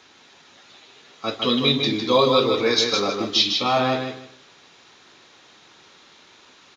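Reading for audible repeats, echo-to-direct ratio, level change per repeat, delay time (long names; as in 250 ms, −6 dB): 3, −5.0 dB, −13.0 dB, 155 ms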